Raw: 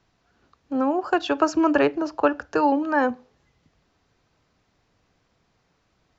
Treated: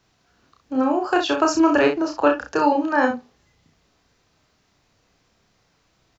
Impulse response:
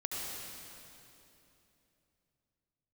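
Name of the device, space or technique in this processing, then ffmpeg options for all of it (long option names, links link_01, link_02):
slapback doubling: -filter_complex "[0:a]asplit=3[link_01][link_02][link_03];[link_02]adelay=31,volume=-3dB[link_04];[link_03]adelay=64,volume=-8dB[link_05];[link_01][link_04][link_05]amix=inputs=3:normalize=0,highshelf=frequency=3500:gain=7.5"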